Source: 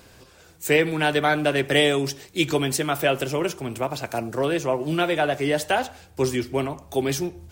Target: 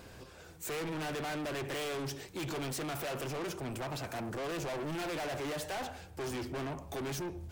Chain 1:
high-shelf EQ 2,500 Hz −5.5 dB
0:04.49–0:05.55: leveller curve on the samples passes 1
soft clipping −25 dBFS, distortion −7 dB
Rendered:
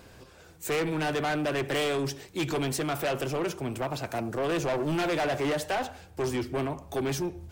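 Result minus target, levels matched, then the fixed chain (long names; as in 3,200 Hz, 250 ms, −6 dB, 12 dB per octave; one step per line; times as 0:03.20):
soft clipping: distortion −5 dB
high-shelf EQ 2,500 Hz −5.5 dB
0:04.49–0:05.55: leveller curve on the samples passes 1
soft clipping −36 dBFS, distortion −2 dB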